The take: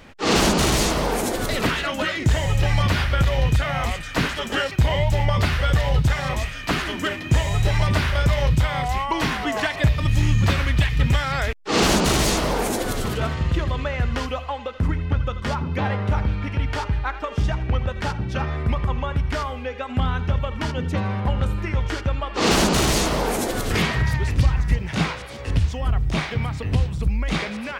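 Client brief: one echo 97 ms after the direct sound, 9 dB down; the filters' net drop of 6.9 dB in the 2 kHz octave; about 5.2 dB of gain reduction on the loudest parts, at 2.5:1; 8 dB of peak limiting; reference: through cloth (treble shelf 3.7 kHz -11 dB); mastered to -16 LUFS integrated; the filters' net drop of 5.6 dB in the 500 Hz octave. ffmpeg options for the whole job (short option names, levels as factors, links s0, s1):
-af "equalizer=f=500:t=o:g=-6.5,equalizer=f=2000:t=o:g=-5.5,acompressor=threshold=0.0891:ratio=2.5,alimiter=limit=0.106:level=0:latency=1,highshelf=f=3700:g=-11,aecho=1:1:97:0.355,volume=4.73"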